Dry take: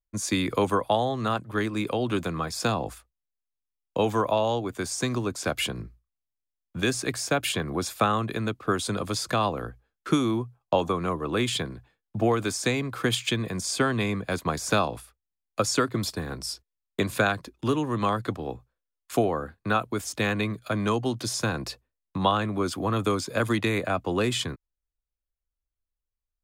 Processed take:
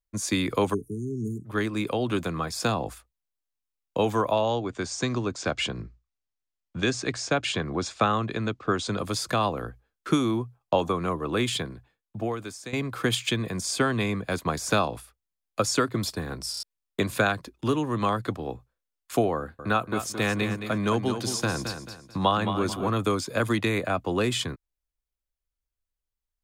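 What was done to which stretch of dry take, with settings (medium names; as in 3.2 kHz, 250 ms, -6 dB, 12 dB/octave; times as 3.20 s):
0.74–1.46 s: spectral selection erased 440–5400 Hz
4.42–8.99 s: inverse Chebyshev low-pass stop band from 12 kHz
11.44–12.73 s: fade out, to -15 dB
16.51 s: stutter in place 0.03 s, 4 plays
19.37–22.90 s: feedback delay 219 ms, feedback 33%, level -8.5 dB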